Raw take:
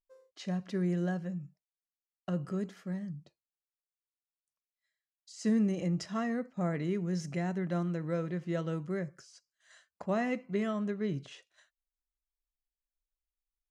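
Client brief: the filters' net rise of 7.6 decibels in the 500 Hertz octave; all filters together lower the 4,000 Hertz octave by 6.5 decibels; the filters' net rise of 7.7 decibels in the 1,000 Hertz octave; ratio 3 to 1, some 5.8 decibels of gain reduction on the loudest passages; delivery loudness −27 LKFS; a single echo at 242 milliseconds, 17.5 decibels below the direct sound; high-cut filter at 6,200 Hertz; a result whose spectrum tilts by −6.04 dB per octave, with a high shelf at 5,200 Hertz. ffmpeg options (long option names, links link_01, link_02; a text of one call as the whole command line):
ffmpeg -i in.wav -af "lowpass=6200,equalizer=frequency=500:width_type=o:gain=7.5,equalizer=frequency=1000:width_type=o:gain=8.5,equalizer=frequency=4000:width_type=o:gain=-7,highshelf=frequency=5200:gain=-4,acompressor=threshold=-29dB:ratio=3,aecho=1:1:242:0.133,volume=7.5dB" out.wav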